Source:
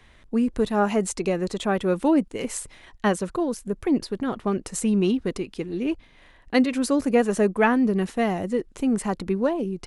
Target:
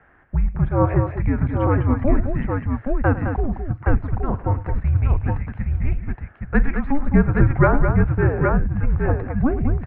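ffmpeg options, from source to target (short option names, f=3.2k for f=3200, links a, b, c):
-af "highpass=130,highpass=f=170:t=q:w=0.5412,highpass=f=170:t=q:w=1.307,lowpass=f=2.2k:t=q:w=0.5176,lowpass=f=2.2k:t=q:w=0.7071,lowpass=f=2.2k:t=q:w=1.932,afreqshift=-290,aecho=1:1:43|105|212|819:0.141|0.158|0.422|0.631,volume=4dB"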